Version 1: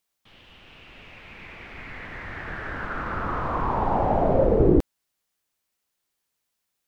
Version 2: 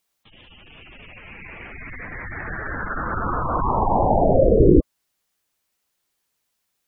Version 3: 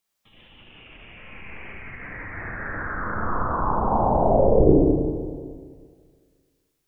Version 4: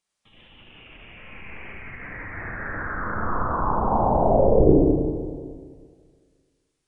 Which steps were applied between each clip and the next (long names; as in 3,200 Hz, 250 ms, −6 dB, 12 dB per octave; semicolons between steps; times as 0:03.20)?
gate on every frequency bin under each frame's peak −15 dB strong; level +4.5 dB
four-comb reverb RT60 1.9 s, combs from 29 ms, DRR −2 dB; level −5.5 dB
downsampling to 22,050 Hz